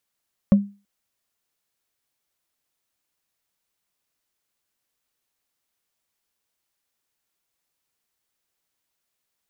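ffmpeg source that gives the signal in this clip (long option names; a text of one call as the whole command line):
ffmpeg -f lavfi -i "aevalsrc='0.447*pow(10,-3*t/0.31)*sin(2*PI*201*t)+0.119*pow(10,-3*t/0.092)*sin(2*PI*554.2*t)+0.0316*pow(10,-3*t/0.041)*sin(2*PI*1086.2*t)+0.00841*pow(10,-3*t/0.022)*sin(2*PI*1795.5*t)+0.00224*pow(10,-3*t/0.014)*sin(2*PI*2681.3*t)':duration=0.33:sample_rate=44100" out.wav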